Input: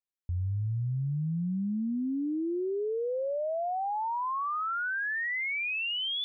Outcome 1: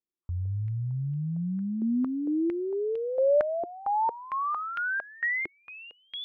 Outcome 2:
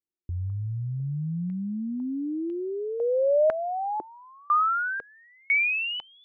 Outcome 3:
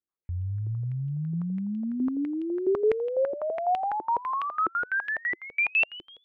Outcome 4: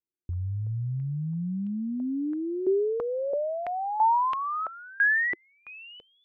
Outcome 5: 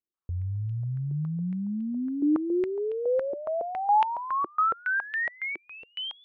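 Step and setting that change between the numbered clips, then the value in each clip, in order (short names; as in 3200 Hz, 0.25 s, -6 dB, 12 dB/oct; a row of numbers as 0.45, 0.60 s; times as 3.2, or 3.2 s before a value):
stepped low-pass, rate: 4.4, 2, 12, 3, 7.2 Hz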